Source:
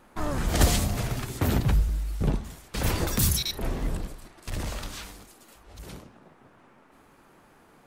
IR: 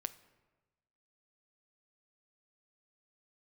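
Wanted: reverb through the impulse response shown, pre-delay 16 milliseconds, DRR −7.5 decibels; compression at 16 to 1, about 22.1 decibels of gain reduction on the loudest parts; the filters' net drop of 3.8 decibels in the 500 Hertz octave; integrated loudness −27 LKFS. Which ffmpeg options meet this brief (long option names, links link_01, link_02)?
-filter_complex "[0:a]equalizer=frequency=500:width_type=o:gain=-5,acompressor=threshold=-36dB:ratio=16,asplit=2[link_01][link_02];[1:a]atrim=start_sample=2205,adelay=16[link_03];[link_02][link_03]afir=irnorm=-1:irlink=0,volume=9dB[link_04];[link_01][link_04]amix=inputs=2:normalize=0,volume=7dB"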